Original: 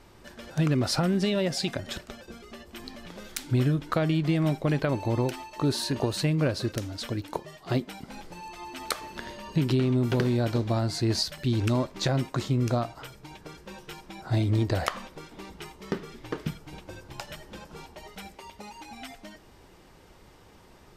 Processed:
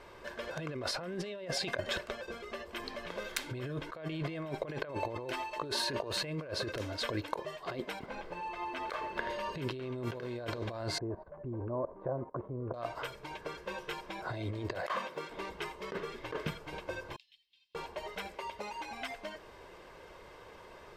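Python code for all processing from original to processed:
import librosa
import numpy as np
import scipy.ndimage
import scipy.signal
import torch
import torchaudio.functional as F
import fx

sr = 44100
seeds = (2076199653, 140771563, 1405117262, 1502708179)

y = fx.chain(x, sr, fx.block_float(bits=5),
    fx.lowpass(hz=2200.0, slope=6), at=(7.99, 9.3))
y = fx.chain(y, sr, fx.lowpass(hz=1000.0, slope=24),
    fx.level_steps(step_db=17), at=(10.98, 12.74))
y = fx.chain(y, sr, fx.block_float(bits=7),
    fx.highpass(hz=110.0, slope=24), at=(14.75, 15.3))
y = fx.chain(y, sr, fx.cheby2_highpass(hz=1500.0, order=4, stop_db=50),
    fx.air_absorb(metres=430.0), at=(17.16, 17.75))
y = fx.bass_treble(y, sr, bass_db=-12, treble_db=-11)
y = y + 0.42 * np.pad(y, (int(1.9 * sr / 1000.0), 0))[:len(y)]
y = fx.over_compress(y, sr, threshold_db=-37.0, ratio=-1.0)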